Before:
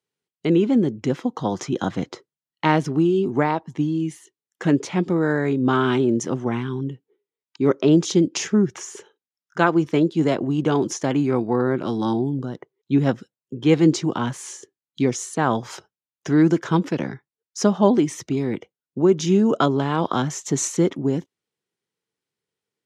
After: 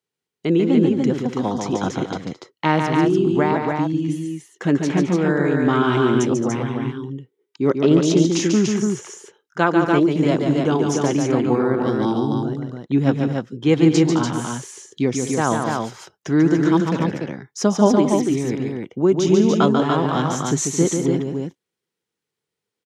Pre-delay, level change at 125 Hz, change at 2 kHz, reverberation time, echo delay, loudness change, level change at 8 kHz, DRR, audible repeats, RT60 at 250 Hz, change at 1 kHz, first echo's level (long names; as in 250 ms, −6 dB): no reverb audible, +2.5 dB, +2.5 dB, no reverb audible, 142 ms, +2.0 dB, +2.5 dB, no reverb audible, 3, no reverb audible, +2.5 dB, −5.0 dB